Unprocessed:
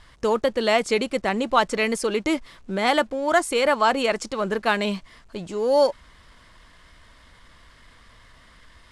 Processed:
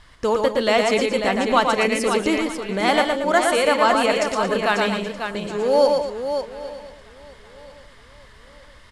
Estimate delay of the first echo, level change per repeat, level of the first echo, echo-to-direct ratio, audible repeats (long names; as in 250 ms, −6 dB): 51 ms, repeats not evenly spaced, −20.0 dB, −1.5 dB, 12